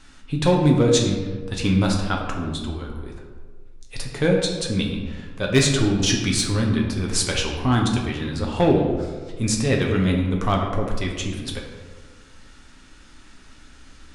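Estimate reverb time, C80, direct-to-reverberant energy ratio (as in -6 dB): 1.5 s, 5.5 dB, -0.5 dB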